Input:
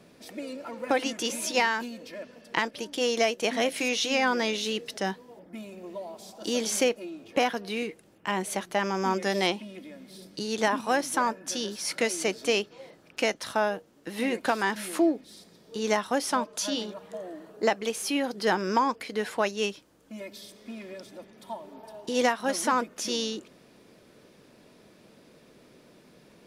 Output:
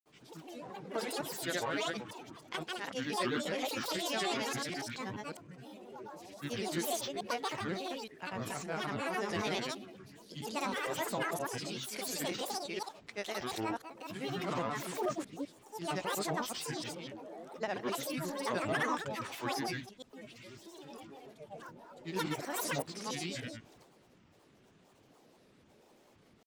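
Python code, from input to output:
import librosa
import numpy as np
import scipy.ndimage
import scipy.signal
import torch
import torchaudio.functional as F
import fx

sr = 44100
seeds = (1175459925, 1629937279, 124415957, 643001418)

y = fx.reverse_delay(x, sr, ms=171, wet_db=-2.5)
y = fx.transient(y, sr, attack_db=-2, sustain_db=5)
y = fx.granulator(y, sr, seeds[0], grain_ms=100.0, per_s=27.0, spray_ms=100.0, spread_st=12)
y = y * librosa.db_to_amplitude(-8.0)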